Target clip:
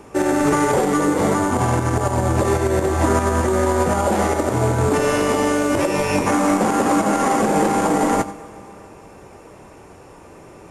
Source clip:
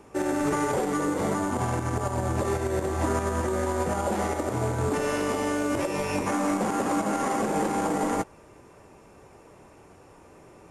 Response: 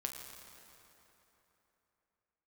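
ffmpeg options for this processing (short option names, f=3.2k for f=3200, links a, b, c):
-filter_complex "[0:a]asplit=2[a][b];[1:a]atrim=start_sample=2205,adelay=90[c];[b][c]afir=irnorm=-1:irlink=0,volume=-14dB[d];[a][d]amix=inputs=2:normalize=0,volume=8.5dB"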